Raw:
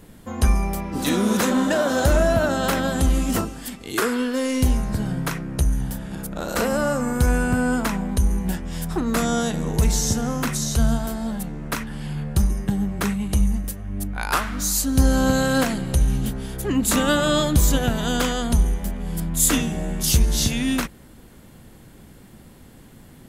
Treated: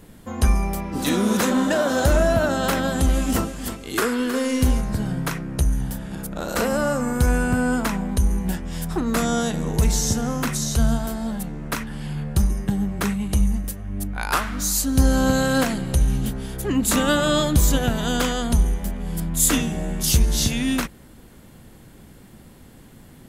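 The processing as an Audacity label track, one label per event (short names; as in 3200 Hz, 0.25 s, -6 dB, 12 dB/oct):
2.770000	4.810000	feedback echo 0.316 s, feedback 31%, level -10 dB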